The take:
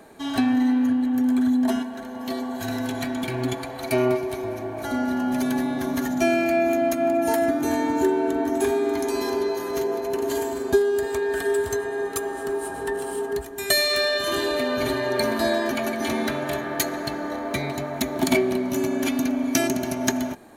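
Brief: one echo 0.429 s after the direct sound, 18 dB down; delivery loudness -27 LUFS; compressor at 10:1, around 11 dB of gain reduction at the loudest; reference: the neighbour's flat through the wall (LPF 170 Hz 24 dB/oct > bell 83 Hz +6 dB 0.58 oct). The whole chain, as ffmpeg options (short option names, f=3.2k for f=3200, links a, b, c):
-af "acompressor=threshold=-26dB:ratio=10,lowpass=f=170:w=0.5412,lowpass=f=170:w=1.3066,equalizer=f=83:t=o:w=0.58:g=6,aecho=1:1:429:0.126,volume=17.5dB"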